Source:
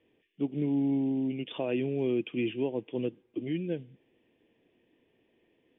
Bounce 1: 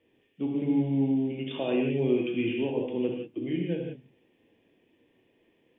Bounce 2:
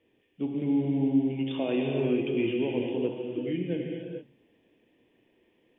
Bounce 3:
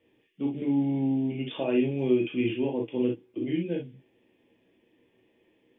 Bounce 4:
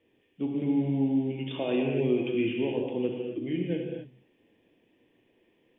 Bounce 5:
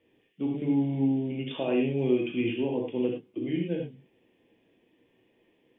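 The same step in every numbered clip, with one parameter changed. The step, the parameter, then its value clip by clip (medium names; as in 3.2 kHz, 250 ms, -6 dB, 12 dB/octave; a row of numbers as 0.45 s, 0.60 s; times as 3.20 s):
gated-style reverb, gate: 200 ms, 480 ms, 80 ms, 300 ms, 130 ms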